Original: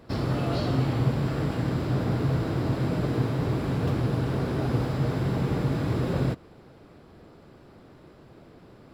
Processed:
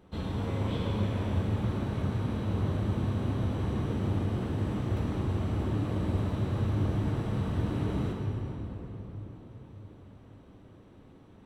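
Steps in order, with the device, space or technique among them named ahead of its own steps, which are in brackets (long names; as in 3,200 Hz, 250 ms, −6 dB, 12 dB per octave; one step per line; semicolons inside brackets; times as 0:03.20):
slowed and reverbed (speed change −22%; convolution reverb RT60 4.4 s, pre-delay 4 ms, DRR 0 dB)
level −7.5 dB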